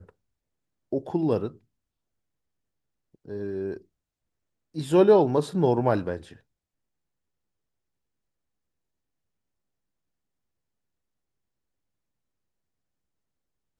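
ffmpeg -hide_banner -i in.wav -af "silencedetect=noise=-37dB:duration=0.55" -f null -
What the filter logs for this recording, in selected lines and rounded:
silence_start: 0.00
silence_end: 0.93 | silence_duration: 0.93
silence_start: 1.51
silence_end: 3.28 | silence_duration: 1.78
silence_start: 3.77
silence_end: 4.76 | silence_duration: 0.98
silence_start: 6.33
silence_end: 13.80 | silence_duration: 7.47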